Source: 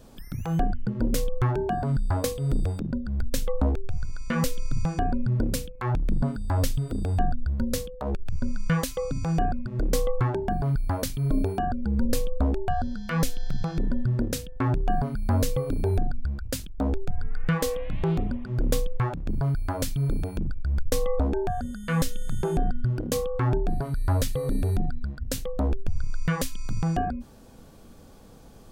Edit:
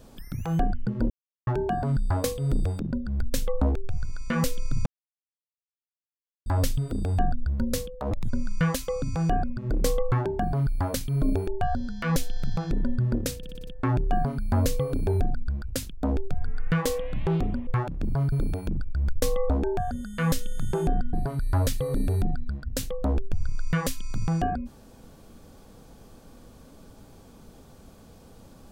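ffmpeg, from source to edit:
ffmpeg -i in.wav -filter_complex "[0:a]asplit=16[link_01][link_02][link_03][link_04][link_05][link_06][link_07][link_08][link_09][link_10][link_11][link_12][link_13][link_14][link_15][link_16];[link_01]atrim=end=1.1,asetpts=PTS-STARTPTS,afade=type=out:start_time=1.096:duration=0.004:curve=hsin[link_17];[link_02]atrim=start=1.1:end=1.47,asetpts=PTS-STARTPTS,volume=0[link_18];[link_03]atrim=start=1.47:end=4.86,asetpts=PTS-STARTPTS,afade=type=in:duration=0.004:curve=hsin,afade=type=out:start_time=3.386:duration=0.004:curve=hsin[link_19];[link_04]atrim=start=4.86:end=6.46,asetpts=PTS-STARTPTS,volume=0[link_20];[link_05]atrim=start=6.46:end=8.114,asetpts=PTS-STARTPTS,afade=type=in:duration=0.004:curve=hsin[link_21];[link_06]atrim=start=8.11:end=8.38,asetpts=PTS-STARTPTS,asetrate=65709,aresample=44100,atrim=end_sample=7991,asetpts=PTS-STARTPTS[link_22];[link_07]atrim=start=8.376:end=11.562[link_23];[link_08]atrim=start=12.538:end=14.502[link_24];[link_09]atrim=start=14.438:end=14.502[link_25];[link_10]atrim=start=14.438:end=14.502[link_26];[link_11]atrim=start=14.438:end=14.502[link_27];[link_12]atrim=start=14.438:end=14.502[link_28];[link_13]atrim=start=14.438:end=18.442[link_29];[link_14]atrim=start=18.928:end=19.582[link_30];[link_15]atrim=start=20.018:end=22.832[link_31];[link_16]atrim=start=23.678[link_32];[link_17][link_18][link_19][link_20][link_21]concat=n=5:v=0:a=1[link_33];[link_33][link_22]acrossfade=duration=0.004:curve1=hsin:curve2=hsin[link_34];[link_34][link_23]acrossfade=duration=0.004:curve1=hsin:curve2=hsin[link_35];[link_35][link_24]acrossfade=duration=0.004:curve1=hsin:curve2=hsin[link_36];[link_36][link_25]acrossfade=duration=0.004:curve1=hsin:curve2=hsin[link_37];[link_37][link_26]acrossfade=duration=0.004:curve1=hsin:curve2=hsin[link_38];[link_38][link_27]acrossfade=duration=0.004:curve1=hsin:curve2=hsin[link_39];[link_39][link_28]acrossfade=duration=0.004:curve1=hsin:curve2=hsin[link_40];[link_40][link_29]acrossfade=duration=0.004:curve1=hsin:curve2=hsin[link_41];[link_41][link_30]acrossfade=duration=0.004:curve1=hsin:curve2=hsin[link_42];[link_42][link_31]acrossfade=duration=0.004:curve1=hsin:curve2=hsin[link_43];[link_43][link_32]acrossfade=duration=0.004:curve1=hsin:curve2=hsin" out.wav

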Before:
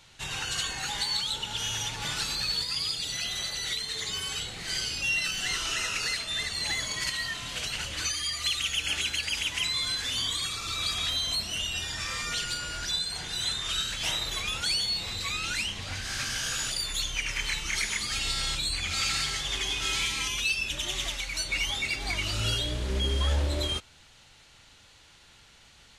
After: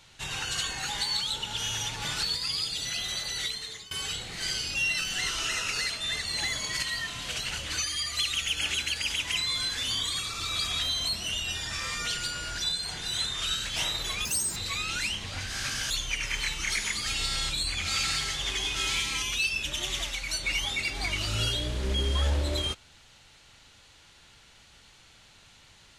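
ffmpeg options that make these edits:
ffmpeg -i in.wav -filter_complex "[0:a]asplit=6[link_01][link_02][link_03][link_04][link_05][link_06];[link_01]atrim=end=2.232[link_07];[link_02]atrim=start=2.498:end=4.18,asetpts=PTS-STARTPTS,afade=type=out:start_time=1.222:duration=0.46:silence=0.0944061[link_08];[link_03]atrim=start=4.18:end=14.524,asetpts=PTS-STARTPTS,afade=type=in:duration=0.004:curve=hsin:silence=0.0944061[link_09];[link_04]atrim=start=14.52:end=15.11,asetpts=PTS-STARTPTS,asetrate=82908,aresample=44100[link_10];[link_05]atrim=start=15.106:end=16.452[link_11];[link_06]atrim=start=16.958[link_12];[link_08][link_09]concat=n=2:v=0:a=1[link_13];[link_07][link_13]acrossfade=duration=0.004:curve1=hsin:curve2=hsin[link_14];[link_14][link_10]acrossfade=duration=0.004:curve1=hsin:curve2=hsin[link_15];[link_15][link_11]acrossfade=duration=0.004:curve1=hsin:curve2=hsin[link_16];[link_16][link_12]acrossfade=duration=0.004:curve1=hsin:curve2=hsin" out.wav

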